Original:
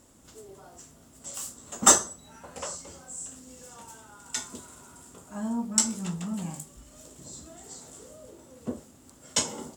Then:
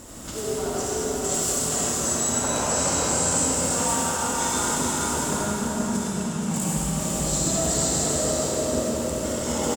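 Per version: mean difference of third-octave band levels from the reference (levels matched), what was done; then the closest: 14.0 dB: negative-ratio compressor -42 dBFS, ratio -1; on a send: echo 0.481 s -5.5 dB; on the sum: digital reverb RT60 4.6 s, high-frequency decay 0.9×, pre-delay 25 ms, DRR -7.5 dB; gain +7 dB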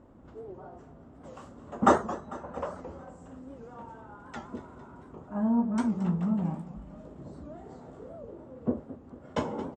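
9.5 dB: LPF 1100 Hz 12 dB/oct; feedback echo 0.224 s, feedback 54%, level -15.5 dB; record warp 78 rpm, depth 160 cents; gain +5 dB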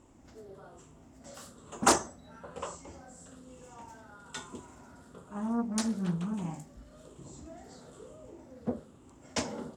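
5.0 dB: moving spectral ripple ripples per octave 0.68, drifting -1.1 Hz, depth 6 dB; LPF 1600 Hz 6 dB/oct; Doppler distortion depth 0.35 ms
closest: third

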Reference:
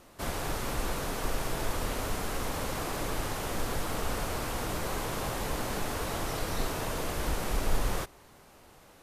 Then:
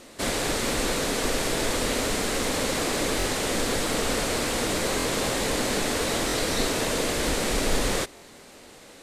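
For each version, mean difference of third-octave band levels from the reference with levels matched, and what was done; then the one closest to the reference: 3.0 dB: ten-band EQ 250 Hz +9 dB, 500 Hz +8 dB, 2000 Hz +8 dB, 4000 Hz +9 dB, 8000 Hz +11 dB; stuck buffer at 3.18/4.98/6.27/8.15, samples 1024, times 2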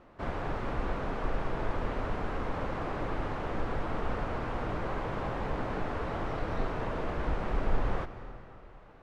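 9.0 dB: LPF 1900 Hz 12 dB/oct; digital reverb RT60 2.8 s, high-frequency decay 0.85×, pre-delay 0.1 s, DRR 11.5 dB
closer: first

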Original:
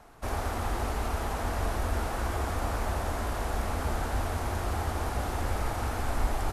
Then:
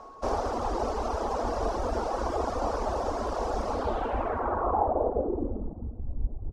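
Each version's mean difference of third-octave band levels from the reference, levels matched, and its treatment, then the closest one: 12.5 dB: reverb removal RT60 1 s; ten-band EQ 125 Hz -11 dB, 250 Hz +5 dB, 500 Hz +10 dB, 1000 Hz +6 dB, 2000 Hz -8 dB, 4000 Hz -5 dB; whine 1100 Hz -47 dBFS; low-pass sweep 5300 Hz -> 130 Hz, 3.7–5.97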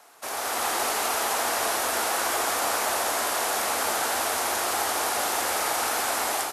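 8.5 dB: AGC gain up to 7 dB; HPF 460 Hz 12 dB/oct; high shelf 2900 Hz +11.5 dB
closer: second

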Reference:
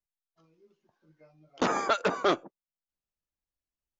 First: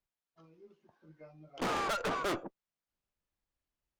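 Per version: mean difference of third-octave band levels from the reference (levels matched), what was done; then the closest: 6.5 dB: high shelf 5000 Hz -11.5 dB; tube stage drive 37 dB, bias 0.35; gain +6 dB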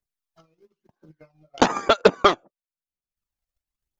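5.0 dB: transient shaper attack +12 dB, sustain -9 dB; phaser 1 Hz, delay 1.7 ms, feedback 46%; gain +1 dB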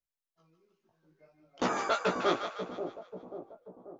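3.5 dB: chorus 2.9 Hz, delay 16 ms, depth 2.1 ms; split-band echo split 780 Hz, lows 0.537 s, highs 0.152 s, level -7.5 dB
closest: third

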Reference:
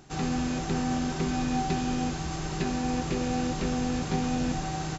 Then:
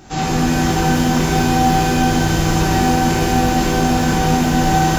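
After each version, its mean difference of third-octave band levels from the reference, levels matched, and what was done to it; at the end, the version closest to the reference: 5.5 dB: limiter -22 dBFS, peak gain reduction 6.5 dB; shimmer reverb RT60 1.8 s, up +12 st, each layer -8 dB, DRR -6.5 dB; gain +8 dB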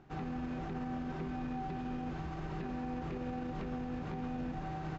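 4.5 dB: LPF 2100 Hz 12 dB/oct; limiter -26 dBFS, peak gain reduction 10 dB; gain -5.5 dB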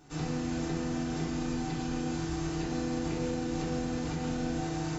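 2.5 dB: limiter -22.5 dBFS, peak gain reduction 7 dB; FDN reverb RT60 0.95 s, low-frequency decay 1×, high-frequency decay 0.55×, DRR -5 dB; gain -8.5 dB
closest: third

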